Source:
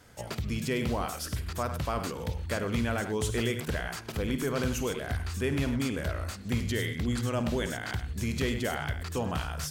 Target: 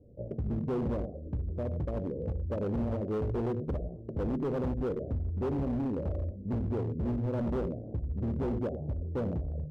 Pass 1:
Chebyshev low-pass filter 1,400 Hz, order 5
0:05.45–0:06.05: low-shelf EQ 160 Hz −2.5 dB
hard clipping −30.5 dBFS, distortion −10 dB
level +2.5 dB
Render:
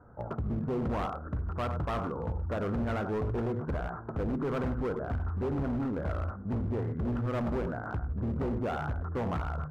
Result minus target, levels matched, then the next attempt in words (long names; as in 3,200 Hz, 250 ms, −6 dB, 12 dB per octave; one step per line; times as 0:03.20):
1,000 Hz band +7.5 dB
Chebyshev low-pass filter 580 Hz, order 5
0:05.45–0:06.05: low-shelf EQ 160 Hz −2.5 dB
hard clipping −30.5 dBFS, distortion −11 dB
level +2.5 dB